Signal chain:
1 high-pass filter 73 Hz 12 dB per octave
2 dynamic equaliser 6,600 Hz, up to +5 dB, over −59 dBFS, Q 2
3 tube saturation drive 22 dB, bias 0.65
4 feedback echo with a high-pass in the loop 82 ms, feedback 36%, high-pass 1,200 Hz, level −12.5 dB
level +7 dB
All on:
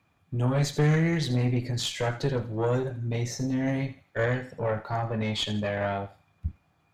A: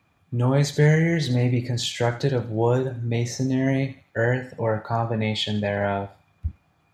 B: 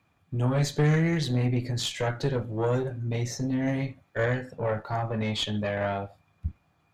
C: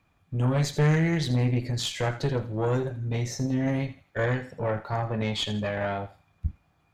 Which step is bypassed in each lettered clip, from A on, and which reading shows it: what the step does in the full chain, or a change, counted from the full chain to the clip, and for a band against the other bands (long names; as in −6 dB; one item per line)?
3, change in crest factor +2.5 dB
4, echo-to-direct ratio −14.5 dB to none audible
1, change in crest factor −1.5 dB